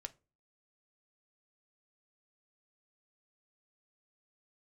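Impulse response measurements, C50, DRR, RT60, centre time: 21.5 dB, 7.5 dB, not exponential, 3 ms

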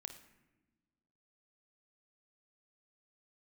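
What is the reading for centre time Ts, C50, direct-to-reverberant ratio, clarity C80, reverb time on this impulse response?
15 ms, 8.5 dB, 6.0 dB, 12.0 dB, 1.1 s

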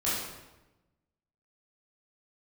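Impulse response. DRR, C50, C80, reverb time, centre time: -10.0 dB, -0.5 dB, 2.5 dB, 1.0 s, 80 ms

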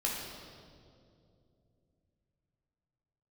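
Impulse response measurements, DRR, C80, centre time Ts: -3.5 dB, 2.5 dB, 92 ms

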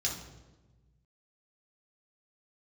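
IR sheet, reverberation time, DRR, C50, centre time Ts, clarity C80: 1.2 s, -3.0 dB, 5.0 dB, 36 ms, 8.5 dB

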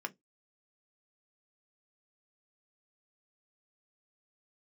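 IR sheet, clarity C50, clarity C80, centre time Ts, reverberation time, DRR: 26.5 dB, 38.0 dB, 4 ms, 0.15 s, 6.5 dB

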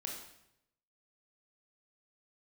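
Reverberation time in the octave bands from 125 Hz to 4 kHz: 1.0, 0.85, 0.85, 0.75, 0.75, 0.70 s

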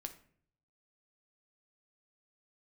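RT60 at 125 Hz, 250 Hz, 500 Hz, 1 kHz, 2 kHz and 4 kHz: 1.0, 0.70, 0.65, 0.50, 0.50, 0.35 s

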